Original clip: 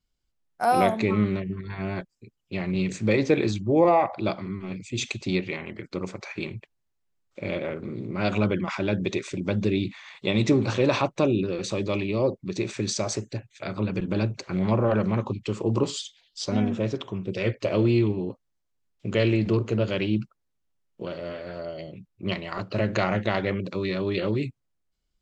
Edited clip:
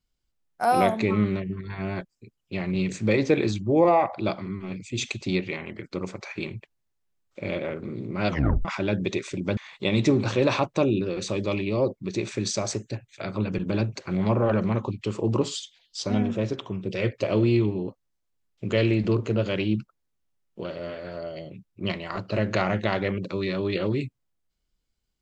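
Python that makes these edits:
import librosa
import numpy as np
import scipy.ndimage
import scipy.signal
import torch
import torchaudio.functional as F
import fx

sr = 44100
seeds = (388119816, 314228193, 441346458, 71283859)

y = fx.edit(x, sr, fx.tape_stop(start_s=8.29, length_s=0.36),
    fx.cut(start_s=9.57, length_s=0.42), tone=tone)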